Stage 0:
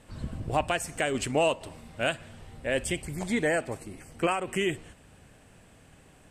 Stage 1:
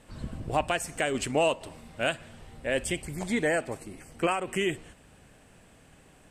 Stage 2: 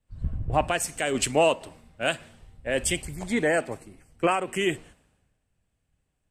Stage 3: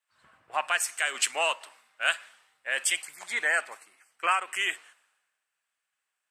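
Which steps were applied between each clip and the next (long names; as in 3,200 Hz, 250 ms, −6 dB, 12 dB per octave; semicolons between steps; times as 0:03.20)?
parametric band 95 Hz −3.5 dB 1 octave
in parallel at +2.5 dB: brickwall limiter −20 dBFS, peak gain reduction 6.5 dB; on the sum: multiband upward and downward expander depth 100%; level −4 dB
high-pass with resonance 1,300 Hz, resonance Q 1.6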